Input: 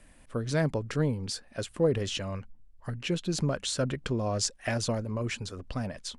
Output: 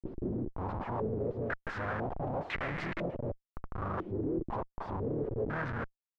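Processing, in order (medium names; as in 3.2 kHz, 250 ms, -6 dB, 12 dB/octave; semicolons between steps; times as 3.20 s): reverse the whole clip; peak limiter -21.5 dBFS, peak gain reduction 10 dB; harmony voices -5 st -5 dB, +3 st -9 dB, +12 st -9 dB; Schmitt trigger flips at -40 dBFS; step-sequenced low-pass 2 Hz 350–2000 Hz; trim -5.5 dB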